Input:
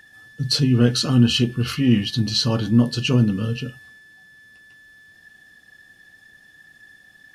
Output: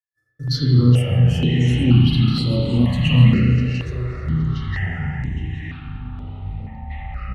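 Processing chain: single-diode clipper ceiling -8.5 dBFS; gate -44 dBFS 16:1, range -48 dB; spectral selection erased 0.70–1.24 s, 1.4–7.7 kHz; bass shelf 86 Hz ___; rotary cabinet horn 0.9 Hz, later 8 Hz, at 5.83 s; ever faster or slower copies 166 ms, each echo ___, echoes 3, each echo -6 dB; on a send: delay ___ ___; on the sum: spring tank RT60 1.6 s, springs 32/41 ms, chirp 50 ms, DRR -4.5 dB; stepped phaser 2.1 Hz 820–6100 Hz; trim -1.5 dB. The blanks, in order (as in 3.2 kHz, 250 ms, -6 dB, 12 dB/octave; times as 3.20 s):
+3 dB, -7 st, 816 ms, -12.5 dB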